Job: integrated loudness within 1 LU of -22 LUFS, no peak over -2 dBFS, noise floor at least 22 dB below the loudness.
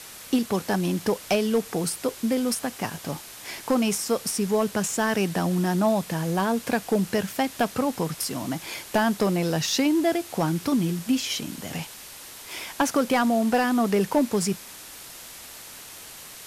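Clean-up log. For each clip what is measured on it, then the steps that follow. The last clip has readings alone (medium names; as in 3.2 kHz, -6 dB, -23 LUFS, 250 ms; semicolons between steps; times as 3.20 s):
clipped samples 0.3%; clipping level -14.0 dBFS; noise floor -43 dBFS; noise floor target -47 dBFS; loudness -25.0 LUFS; peak level -14.0 dBFS; loudness target -22.0 LUFS
-> clip repair -14 dBFS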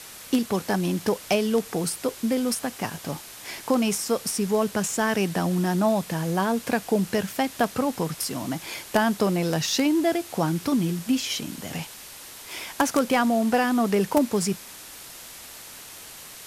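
clipped samples 0.0%; noise floor -43 dBFS; noise floor target -47 dBFS
-> noise reduction 6 dB, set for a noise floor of -43 dBFS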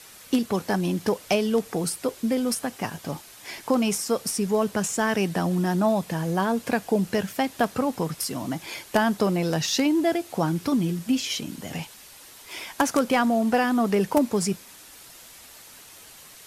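noise floor -47 dBFS; loudness -25.0 LUFS; peak level -5.5 dBFS; loudness target -22.0 LUFS
-> trim +3 dB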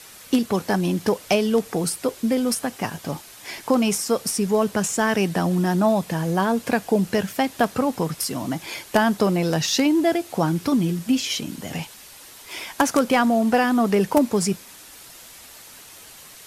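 loudness -22.0 LUFS; peak level -2.5 dBFS; noise floor -44 dBFS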